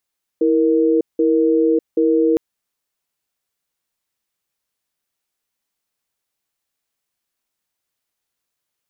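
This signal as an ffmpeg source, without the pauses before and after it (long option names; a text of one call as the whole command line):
ffmpeg -f lavfi -i "aevalsrc='0.178*(sin(2*PI*325*t)+sin(2*PI*468*t))*clip(min(mod(t,0.78),0.6-mod(t,0.78))/0.005,0,1)':duration=1.96:sample_rate=44100" out.wav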